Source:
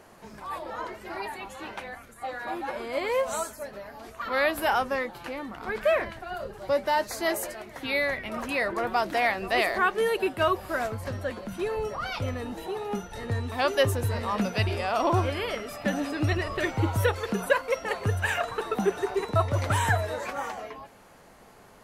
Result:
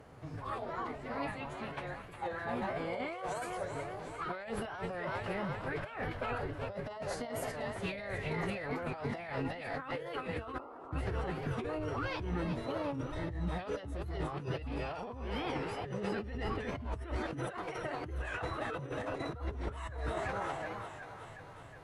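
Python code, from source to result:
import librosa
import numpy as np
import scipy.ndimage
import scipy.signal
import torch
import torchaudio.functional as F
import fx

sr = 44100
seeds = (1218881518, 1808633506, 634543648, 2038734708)

y = fx.peak_eq(x, sr, hz=150.0, db=13.5, octaves=0.44)
y = fx.comb_fb(y, sr, f0_hz=200.0, decay_s=0.4, harmonics='all', damping=0.0, mix_pct=40)
y = fx.echo_thinned(y, sr, ms=367, feedback_pct=68, hz=400.0, wet_db=-11.0)
y = fx.pitch_keep_formants(y, sr, semitones=-6.0)
y = fx.spec_paint(y, sr, seeds[0], shape='noise', start_s=10.59, length_s=0.33, low_hz=240.0, high_hz=1400.0, level_db=-22.0)
y = fx.over_compress(y, sr, threshold_db=-36.0, ratio=-1.0)
y = fx.curve_eq(y, sr, hz=(130.0, 3200.0, 6800.0), db=(0, -6, -12))
y = fx.record_warp(y, sr, rpm=45.0, depth_cents=100.0)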